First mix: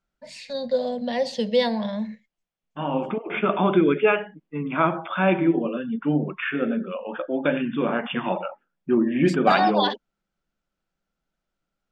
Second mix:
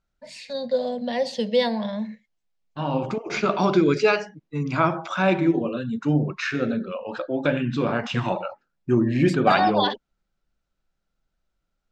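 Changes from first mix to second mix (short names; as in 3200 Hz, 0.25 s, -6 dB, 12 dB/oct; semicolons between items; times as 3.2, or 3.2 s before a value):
second voice: remove brick-wall FIR band-pass 150–3600 Hz; master: add bell 64 Hz -5 dB 1.5 oct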